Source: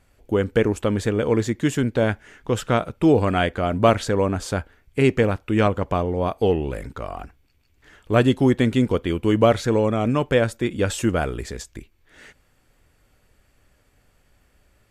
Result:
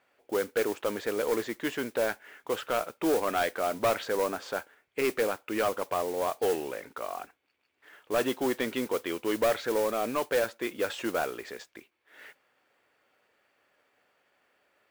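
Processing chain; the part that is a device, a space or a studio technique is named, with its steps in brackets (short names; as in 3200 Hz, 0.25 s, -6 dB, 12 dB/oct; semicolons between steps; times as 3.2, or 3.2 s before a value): carbon microphone (BPF 470–3300 Hz; soft clip -17.5 dBFS, distortion -11 dB; modulation noise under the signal 15 dB); gain -2 dB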